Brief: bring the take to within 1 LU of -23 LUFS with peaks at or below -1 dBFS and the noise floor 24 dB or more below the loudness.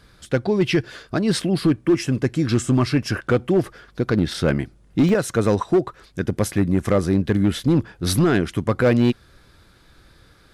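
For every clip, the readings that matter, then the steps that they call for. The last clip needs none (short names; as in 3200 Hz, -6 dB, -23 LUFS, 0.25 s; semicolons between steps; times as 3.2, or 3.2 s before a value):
clipped 1.0%; flat tops at -10.5 dBFS; dropouts 1; longest dropout 1.6 ms; loudness -21.0 LUFS; peak -10.5 dBFS; loudness target -23.0 LUFS
-> clip repair -10.5 dBFS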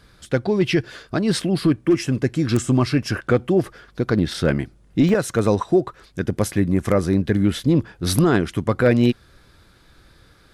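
clipped 0.0%; dropouts 1; longest dropout 1.6 ms
-> interpolate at 5.09, 1.6 ms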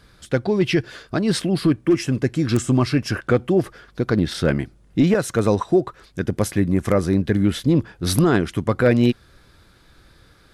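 dropouts 0; loudness -20.5 LUFS; peak -1.5 dBFS; loudness target -23.0 LUFS
-> gain -2.5 dB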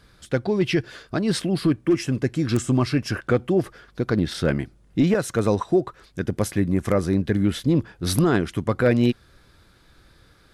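loudness -23.0 LUFS; peak -4.0 dBFS; noise floor -56 dBFS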